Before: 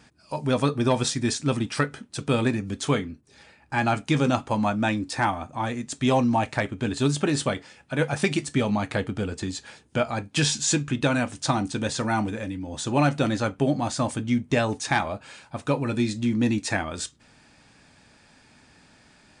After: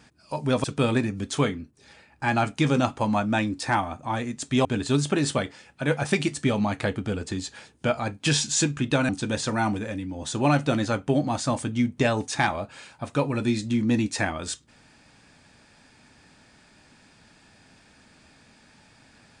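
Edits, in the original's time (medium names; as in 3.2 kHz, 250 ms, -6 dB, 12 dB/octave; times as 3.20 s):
0.64–2.14 s: delete
6.15–6.76 s: delete
11.20–11.61 s: delete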